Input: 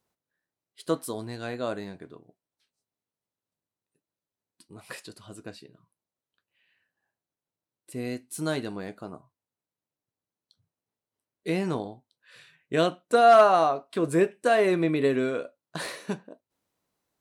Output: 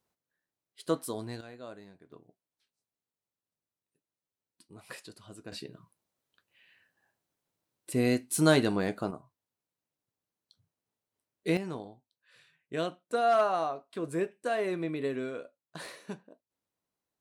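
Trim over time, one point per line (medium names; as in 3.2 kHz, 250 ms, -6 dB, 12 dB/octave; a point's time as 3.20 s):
-2.5 dB
from 1.41 s -14 dB
from 2.12 s -4.5 dB
from 5.52 s +6.5 dB
from 9.11 s 0 dB
from 11.57 s -9 dB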